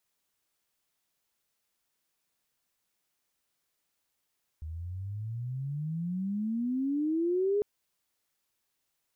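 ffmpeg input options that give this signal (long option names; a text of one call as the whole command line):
ffmpeg -f lavfi -i "aevalsrc='pow(10,(-24+12*(t/3-1))/20)*sin(2*PI*76.5*3/(29.5*log(2)/12)*(exp(29.5*log(2)/12*t/3)-1))':duration=3:sample_rate=44100" out.wav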